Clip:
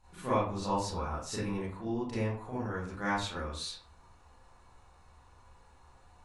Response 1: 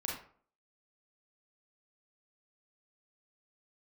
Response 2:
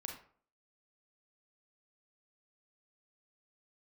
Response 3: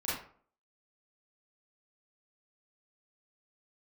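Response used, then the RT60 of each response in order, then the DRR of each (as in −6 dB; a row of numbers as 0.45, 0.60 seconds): 3; 0.50, 0.50, 0.50 seconds; −3.0, 1.0, −10.0 decibels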